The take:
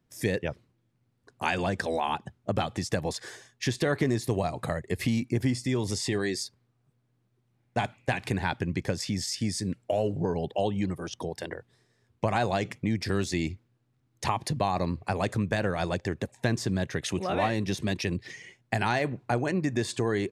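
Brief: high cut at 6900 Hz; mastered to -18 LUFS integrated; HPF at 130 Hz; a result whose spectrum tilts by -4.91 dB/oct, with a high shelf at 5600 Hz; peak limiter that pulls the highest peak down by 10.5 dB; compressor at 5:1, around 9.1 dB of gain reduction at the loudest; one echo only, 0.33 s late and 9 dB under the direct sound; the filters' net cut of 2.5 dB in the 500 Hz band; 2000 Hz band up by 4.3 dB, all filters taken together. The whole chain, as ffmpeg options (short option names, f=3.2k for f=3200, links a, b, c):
-af "highpass=130,lowpass=6.9k,equalizer=f=500:t=o:g=-3.5,equalizer=f=2k:t=o:g=6.5,highshelf=f=5.6k:g=-7.5,acompressor=threshold=-33dB:ratio=5,alimiter=level_in=1dB:limit=-24dB:level=0:latency=1,volume=-1dB,aecho=1:1:330:0.355,volume=20.5dB"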